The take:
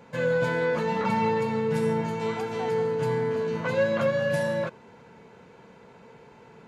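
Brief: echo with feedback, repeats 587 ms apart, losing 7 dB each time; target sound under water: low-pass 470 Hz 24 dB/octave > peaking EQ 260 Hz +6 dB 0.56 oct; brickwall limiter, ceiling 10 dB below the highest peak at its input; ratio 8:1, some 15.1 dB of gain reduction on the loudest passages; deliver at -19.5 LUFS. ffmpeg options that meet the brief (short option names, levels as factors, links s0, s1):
-af "acompressor=threshold=0.0141:ratio=8,alimiter=level_in=5.01:limit=0.0631:level=0:latency=1,volume=0.2,lowpass=f=470:w=0.5412,lowpass=f=470:w=1.3066,equalizer=f=260:t=o:w=0.56:g=6,aecho=1:1:587|1174|1761|2348|2935:0.447|0.201|0.0905|0.0407|0.0183,volume=23.7"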